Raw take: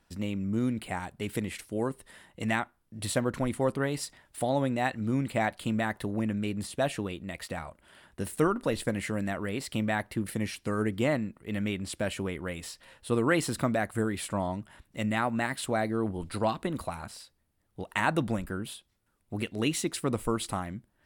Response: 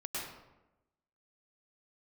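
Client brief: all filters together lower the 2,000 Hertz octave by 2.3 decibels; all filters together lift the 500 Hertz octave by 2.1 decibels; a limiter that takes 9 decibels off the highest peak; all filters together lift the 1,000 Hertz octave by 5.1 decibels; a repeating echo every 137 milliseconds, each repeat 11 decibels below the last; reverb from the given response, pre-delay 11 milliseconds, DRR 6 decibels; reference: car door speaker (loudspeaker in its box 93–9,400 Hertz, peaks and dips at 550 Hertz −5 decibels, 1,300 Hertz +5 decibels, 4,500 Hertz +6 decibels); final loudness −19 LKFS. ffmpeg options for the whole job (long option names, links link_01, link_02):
-filter_complex "[0:a]equalizer=frequency=500:width_type=o:gain=4,equalizer=frequency=1000:width_type=o:gain=6,equalizer=frequency=2000:width_type=o:gain=-7,alimiter=limit=-18.5dB:level=0:latency=1,aecho=1:1:137|274|411:0.282|0.0789|0.0221,asplit=2[link_01][link_02];[1:a]atrim=start_sample=2205,adelay=11[link_03];[link_02][link_03]afir=irnorm=-1:irlink=0,volume=-8.5dB[link_04];[link_01][link_04]amix=inputs=2:normalize=0,highpass=93,equalizer=frequency=550:width_type=q:width=4:gain=-5,equalizer=frequency=1300:width_type=q:width=4:gain=5,equalizer=frequency=4500:width_type=q:width=4:gain=6,lowpass=frequency=9400:width=0.5412,lowpass=frequency=9400:width=1.3066,volume=11.5dB"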